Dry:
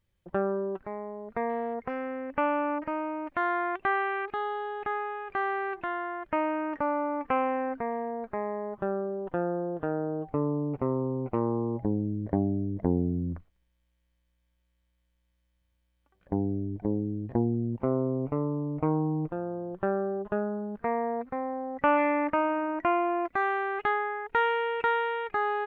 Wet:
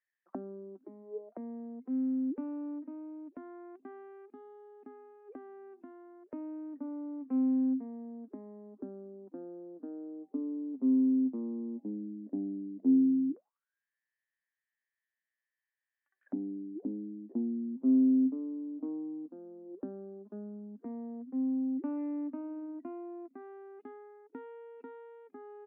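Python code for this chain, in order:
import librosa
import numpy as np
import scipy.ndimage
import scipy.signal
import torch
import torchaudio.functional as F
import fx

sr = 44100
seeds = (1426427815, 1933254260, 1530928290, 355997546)

y = scipy.signal.sosfilt(scipy.signal.ellip(4, 1.0, 40, 200.0, 'highpass', fs=sr, output='sos'), x)
y = fx.auto_wah(y, sr, base_hz=260.0, top_hz=1800.0, q=18.0, full_db=-33.0, direction='down')
y = y * librosa.db_to_amplitude(9.0)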